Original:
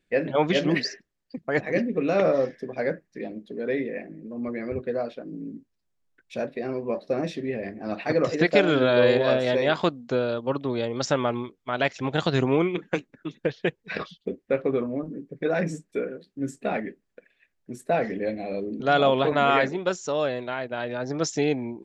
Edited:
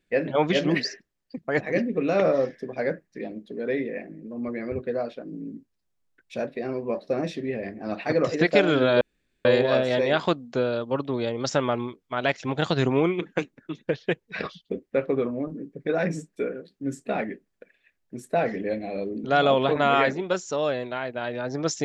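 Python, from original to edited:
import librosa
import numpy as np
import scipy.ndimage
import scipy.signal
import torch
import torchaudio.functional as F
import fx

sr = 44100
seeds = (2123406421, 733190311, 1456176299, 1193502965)

y = fx.edit(x, sr, fx.insert_room_tone(at_s=9.01, length_s=0.44), tone=tone)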